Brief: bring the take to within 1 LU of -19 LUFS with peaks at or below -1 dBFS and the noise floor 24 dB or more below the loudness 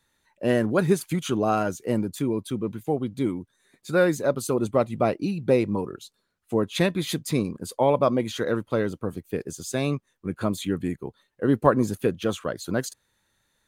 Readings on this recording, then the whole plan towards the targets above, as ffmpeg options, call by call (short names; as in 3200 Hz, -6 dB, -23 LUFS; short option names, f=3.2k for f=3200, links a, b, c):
loudness -25.5 LUFS; peak -3.5 dBFS; loudness target -19.0 LUFS
-> -af "volume=6.5dB,alimiter=limit=-1dB:level=0:latency=1"